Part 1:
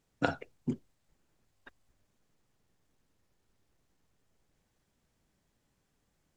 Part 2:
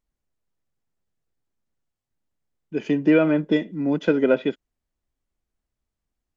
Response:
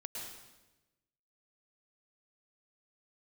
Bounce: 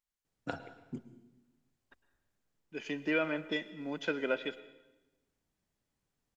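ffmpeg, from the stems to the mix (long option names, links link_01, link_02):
-filter_complex "[0:a]adelay=250,volume=-0.5dB,asplit=2[link_01][link_02];[link_02]volume=-17.5dB[link_03];[1:a]tiltshelf=frequency=720:gain=-8.5,volume=-12.5dB,asplit=3[link_04][link_05][link_06];[link_05]volume=-12dB[link_07];[link_06]apad=whole_len=291641[link_08];[link_01][link_08]sidechaingate=range=-10dB:threshold=-48dB:ratio=16:detection=peak[link_09];[2:a]atrim=start_sample=2205[link_10];[link_03][link_07]amix=inputs=2:normalize=0[link_11];[link_11][link_10]afir=irnorm=-1:irlink=0[link_12];[link_09][link_04][link_12]amix=inputs=3:normalize=0"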